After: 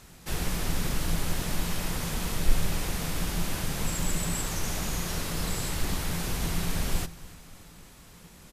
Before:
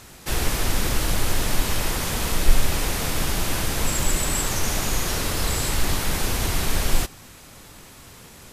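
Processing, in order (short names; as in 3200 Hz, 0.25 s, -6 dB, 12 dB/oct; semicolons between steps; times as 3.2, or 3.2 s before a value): octaver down 2 oct, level +1 dB; bell 170 Hz +10.5 dB 0.27 oct; feedback echo 0.291 s, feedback 55%, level -20 dB; gain -8 dB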